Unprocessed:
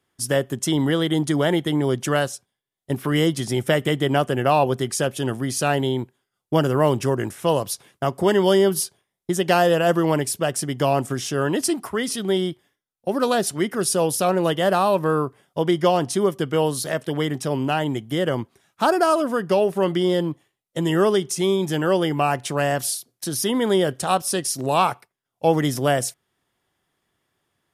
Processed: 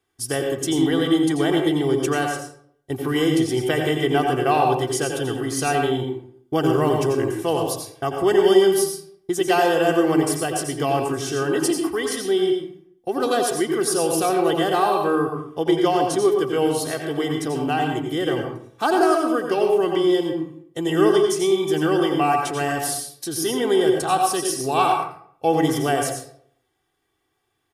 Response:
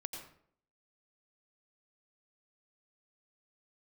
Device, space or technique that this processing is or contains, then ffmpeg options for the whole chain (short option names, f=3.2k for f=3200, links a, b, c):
microphone above a desk: -filter_complex "[0:a]aecho=1:1:2.6:0.64[a];[1:a]atrim=start_sample=2205[b];[a][b]afir=irnorm=-1:irlink=0"